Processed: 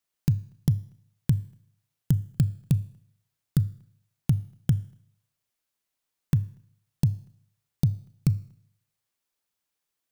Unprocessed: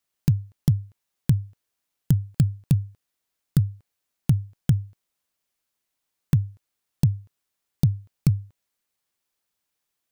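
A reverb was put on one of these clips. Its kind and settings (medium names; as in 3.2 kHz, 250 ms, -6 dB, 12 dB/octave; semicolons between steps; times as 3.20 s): Schroeder reverb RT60 0.66 s, combs from 26 ms, DRR 17.5 dB; trim -3 dB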